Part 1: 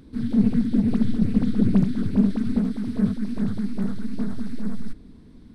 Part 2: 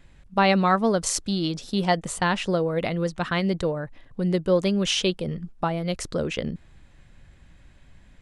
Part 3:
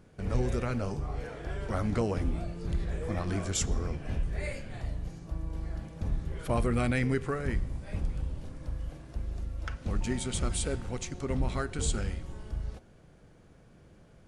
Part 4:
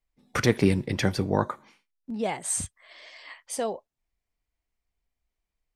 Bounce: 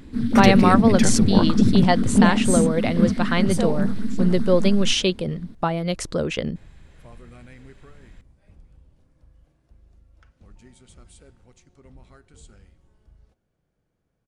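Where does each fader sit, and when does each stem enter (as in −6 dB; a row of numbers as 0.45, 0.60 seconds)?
+3.0, +2.5, −18.5, +1.0 decibels; 0.00, 0.00, 0.55, 0.00 seconds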